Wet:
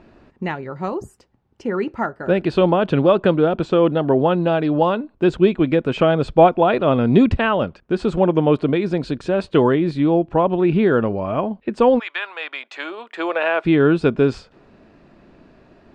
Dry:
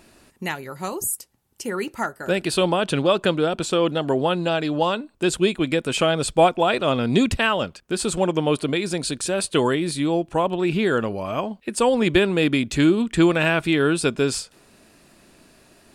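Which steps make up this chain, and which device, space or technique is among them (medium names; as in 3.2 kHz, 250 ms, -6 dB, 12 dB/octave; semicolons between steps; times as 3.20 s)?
11.98–13.64 s: high-pass 1.1 kHz -> 420 Hz 24 dB/octave; distance through air 180 m; through cloth (treble shelf 2.1 kHz -12 dB); trim +6 dB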